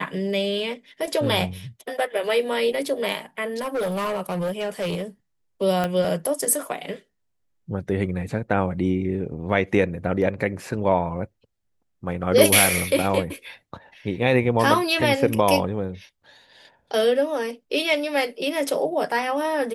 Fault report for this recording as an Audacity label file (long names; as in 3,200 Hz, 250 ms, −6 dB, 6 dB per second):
3.570000	5.030000	clipping −22 dBFS
5.840000	5.840000	click −11 dBFS